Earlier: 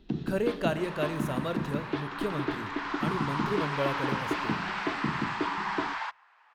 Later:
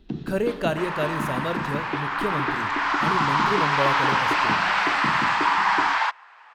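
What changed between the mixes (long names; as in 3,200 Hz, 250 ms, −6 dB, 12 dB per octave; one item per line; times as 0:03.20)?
speech +4.5 dB
first sound: send +10.5 dB
second sound +12.0 dB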